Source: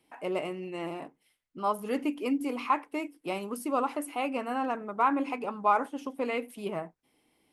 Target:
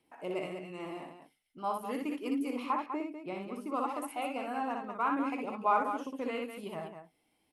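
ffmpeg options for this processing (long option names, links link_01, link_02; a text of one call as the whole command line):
ffmpeg -i in.wav -filter_complex "[0:a]asettb=1/sr,asplit=3[link_01][link_02][link_03];[link_01]atrim=end=2.664[link_04];[link_02]atrim=start=2.66:end=3.74,asetpts=PTS-STARTPTS,afade=type=in:duration=0.004:curve=qsin,afade=type=out:start_time=1.076:duration=0.004:curve=qsin,aemphasis=mode=reproduction:type=75kf[link_05];[link_03]atrim=start=3.736[link_06];[link_04][link_05]acrossfade=duration=0.004:curve1=hsin:curve2=qsin[link_07];[link_07][link_06]acrossfade=duration=0.004:curve1=qsin:curve2=hsin,aphaser=in_gain=1:out_gain=1:delay=1.5:decay=0.27:speed=0.35:type=triangular,aecho=1:1:61.22|198.3:0.631|0.398,volume=-6.5dB" out.wav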